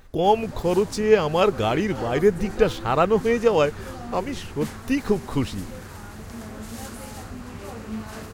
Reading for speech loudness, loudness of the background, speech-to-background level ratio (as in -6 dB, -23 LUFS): -22.5 LUFS, -37.0 LUFS, 14.5 dB